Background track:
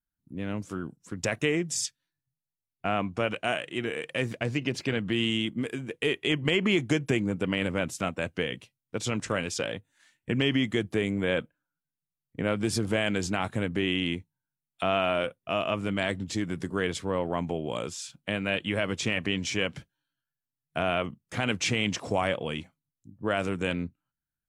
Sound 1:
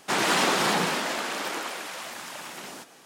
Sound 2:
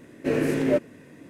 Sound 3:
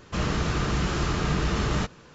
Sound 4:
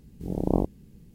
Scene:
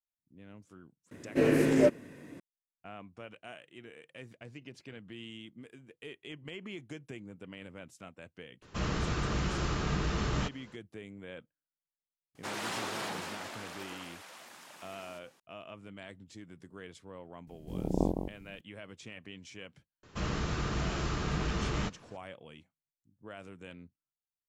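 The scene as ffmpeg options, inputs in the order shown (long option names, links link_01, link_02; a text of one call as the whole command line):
ffmpeg -i bed.wav -i cue0.wav -i cue1.wav -i cue2.wav -i cue3.wav -filter_complex "[3:a]asplit=2[link_01][link_02];[0:a]volume=-19dB[link_03];[4:a]aecho=1:1:161:0.422[link_04];[2:a]atrim=end=1.29,asetpts=PTS-STARTPTS,volume=-1.5dB,afade=type=in:duration=0.004:curve=hsin,afade=type=out:start_time=1.286:duration=0.004:curve=hsin,adelay=1110[link_05];[link_01]atrim=end=2.14,asetpts=PTS-STARTPTS,volume=-6.5dB,afade=type=in:duration=0.004:curve=hsin,afade=type=out:start_time=2.136:duration=0.004:curve=hsin,adelay=8620[link_06];[1:a]atrim=end=3.05,asetpts=PTS-STARTPTS,volume=-14dB,afade=type=in:duration=0.004:curve=hsin,afade=type=out:start_time=3.046:duration=0.004:curve=hsin,adelay=12350[link_07];[link_04]atrim=end=1.14,asetpts=PTS-STARTPTS,volume=-5.5dB,afade=type=in:duration=0.004:curve=hsin,afade=type=out:start_time=1.136:duration=0.004:curve=hsin,adelay=17470[link_08];[link_02]atrim=end=2.14,asetpts=PTS-STARTPTS,volume=-7.5dB,afade=type=in:duration=0.004:curve=hsin,afade=type=out:start_time=2.136:duration=0.004:curve=hsin,adelay=20030[link_09];[link_03][link_05][link_06][link_07][link_08][link_09]amix=inputs=6:normalize=0" out.wav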